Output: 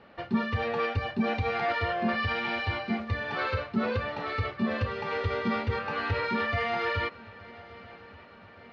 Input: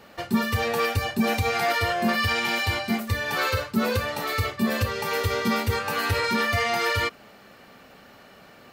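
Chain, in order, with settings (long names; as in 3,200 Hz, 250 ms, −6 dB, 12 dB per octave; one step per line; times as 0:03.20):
Bessel low-pass filter 2,700 Hz, order 6
feedback echo with a long and a short gap by turns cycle 1,164 ms, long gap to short 3 to 1, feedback 54%, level −21.5 dB
level −4 dB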